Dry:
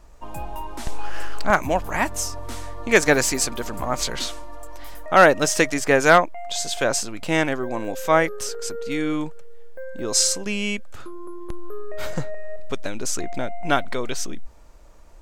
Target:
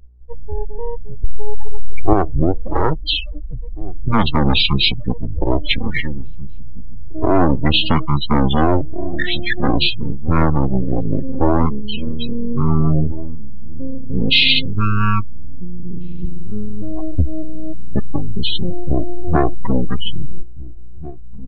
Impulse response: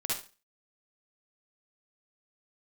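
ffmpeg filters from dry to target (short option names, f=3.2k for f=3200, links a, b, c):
-filter_complex "[0:a]acrossover=split=430|3000[a][b][c];[b]acompressor=threshold=-20dB:ratio=3[d];[a][d][c]amix=inputs=3:normalize=0,afftfilt=real='re*gte(hypot(re,im),0.0891)':imag='im*gte(hypot(re,im),0.0891)':win_size=1024:overlap=0.75,atempo=1.4,acrossover=split=9500[e][f];[f]acompressor=threshold=-42dB:ratio=4:attack=1:release=60[g];[e][g]amix=inputs=2:normalize=0,equalizer=f=230:w=5.1:g=-3.5,asplit=2[h][i];[i]adelay=854,lowpass=f=810:p=1,volume=-15.5dB,asplit=2[j][k];[k]adelay=854,lowpass=f=810:p=1,volume=0.49,asplit=2[l][m];[m]adelay=854,lowpass=f=810:p=1,volume=0.49,asplit=2[n][o];[o]adelay=854,lowpass=f=810:p=1,volume=0.49[p];[j][l][n][p]amix=inputs=4:normalize=0[q];[h][q]amix=inputs=2:normalize=0,asetrate=22315,aresample=44100,aeval=exprs='val(0)+0.00282*(sin(2*PI*60*n/s)+sin(2*PI*2*60*n/s)/2+sin(2*PI*3*60*n/s)/3+sin(2*PI*4*60*n/s)/4+sin(2*PI*5*60*n/s)/5)':c=same,highshelf=f=5.9k:g=-8.5,acrossover=split=110|2300[r][s][t];[s]aeval=exprs='max(val(0),0)':c=same[u];[r][u][t]amix=inputs=3:normalize=0,afftdn=nr=18:nf=-36,alimiter=level_in=14dB:limit=-1dB:release=50:level=0:latency=1,volume=-1dB"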